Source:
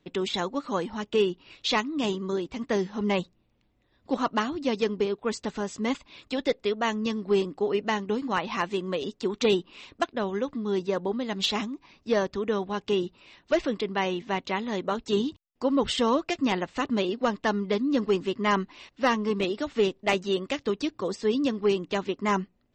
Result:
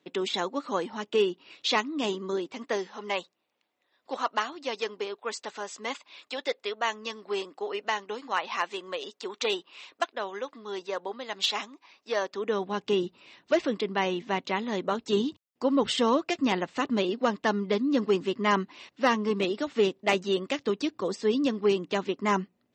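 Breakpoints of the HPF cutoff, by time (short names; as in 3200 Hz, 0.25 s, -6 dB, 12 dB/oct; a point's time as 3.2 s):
2.41 s 260 Hz
2.98 s 600 Hz
12.18 s 600 Hz
12.76 s 150 Hz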